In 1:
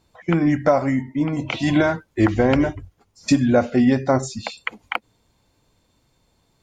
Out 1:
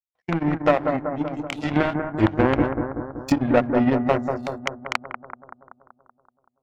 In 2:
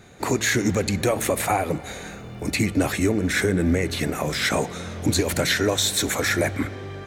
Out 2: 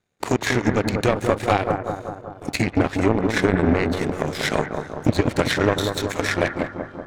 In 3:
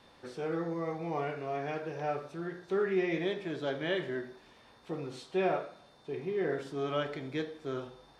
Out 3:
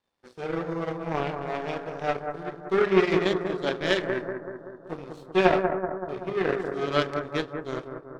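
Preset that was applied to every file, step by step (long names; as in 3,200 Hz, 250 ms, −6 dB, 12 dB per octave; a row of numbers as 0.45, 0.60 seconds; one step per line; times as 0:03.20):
treble cut that deepens with the level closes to 2,000 Hz, closed at −14.5 dBFS
hum removal 68.55 Hz, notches 5
power curve on the samples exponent 2
bucket-brigade delay 190 ms, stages 2,048, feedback 61%, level −6 dB
normalise the peak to −2 dBFS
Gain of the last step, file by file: +3.5, +7.5, +15.5 decibels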